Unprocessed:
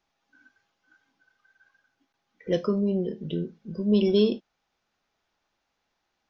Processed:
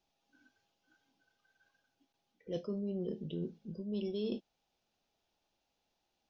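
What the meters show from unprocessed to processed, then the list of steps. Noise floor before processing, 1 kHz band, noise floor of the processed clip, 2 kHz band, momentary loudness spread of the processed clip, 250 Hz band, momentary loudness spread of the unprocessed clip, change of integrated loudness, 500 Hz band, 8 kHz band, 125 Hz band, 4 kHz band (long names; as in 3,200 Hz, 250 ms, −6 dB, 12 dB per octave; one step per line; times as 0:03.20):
−79 dBFS, −16.5 dB, −83 dBFS, −16.5 dB, 7 LU, −13.5 dB, 13 LU, −13.5 dB, −14.0 dB, can't be measured, −12.0 dB, −15.0 dB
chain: flat-topped bell 1,500 Hz −8.5 dB 1.3 octaves
reversed playback
downward compressor 6 to 1, threshold −32 dBFS, peak gain reduction 15 dB
reversed playback
level −3 dB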